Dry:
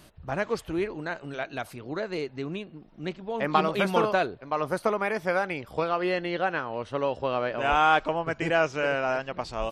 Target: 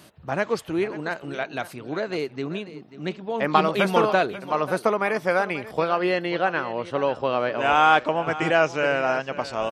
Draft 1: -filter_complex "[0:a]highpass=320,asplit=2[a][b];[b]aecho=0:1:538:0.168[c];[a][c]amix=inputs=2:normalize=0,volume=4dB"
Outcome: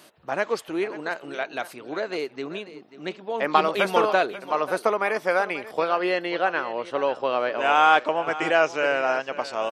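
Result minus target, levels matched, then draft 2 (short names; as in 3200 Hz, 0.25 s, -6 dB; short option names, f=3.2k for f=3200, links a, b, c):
125 Hz band -10.0 dB
-filter_complex "[0:a]highpass=120,asplit=2[a][b];[b]aecho=0:1:538:0.168[c];[a][c]amix=inputs=2:normalize=0,volume=4dB"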